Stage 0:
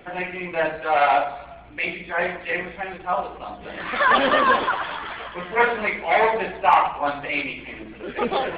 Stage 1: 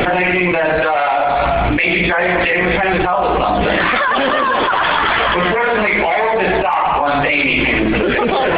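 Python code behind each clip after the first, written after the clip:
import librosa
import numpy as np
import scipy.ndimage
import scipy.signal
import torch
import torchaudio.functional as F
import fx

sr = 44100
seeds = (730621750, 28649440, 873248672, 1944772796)

y = fx.env_flatten(x, sr, amount_pct=100)
y = y * 10.0 ** (-2.0 / 20.0)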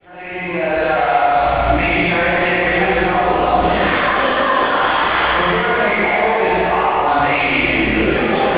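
y = fx.fade_in_head(x, sr, length_s=0.85)
y = fx.rev_plate(y, sr, seeds[0], rt60_s=2.3, hf_ratio=0.85, predelay_ms=0, drr_db=-7.5)
y = y * 10.0 ** (-9.0 / 20.0)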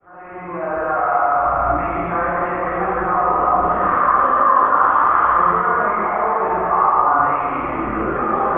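y = fx.ladder_lowpass(x, sr, hz=1300.0, resonance_pct=75)
y = fx.echo_split(y, sr, split_hz=820.0, low_ms=292, high_ms=729, feedback_pct=52, wet_db=-13.5)
y = y * 10.0 ** (4.5 / 20.0)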